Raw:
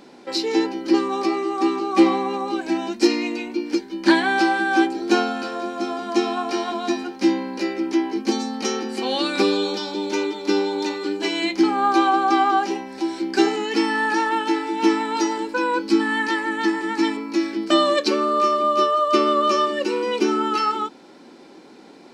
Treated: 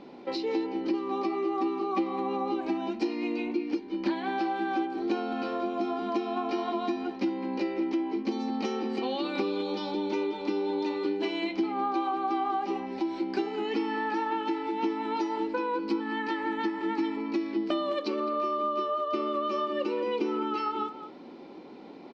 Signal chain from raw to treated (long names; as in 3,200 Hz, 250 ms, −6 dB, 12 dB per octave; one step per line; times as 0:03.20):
parametric band 1,600 Hz −8.5 dB 0.39 octaves
downward compressor 6 to 1, threshold −26 dBFS, peak gain reduction 15.5 dB
high-frequency loss of the air 250 metres
far-end echo of a speakerphone 210 ms, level −11 dB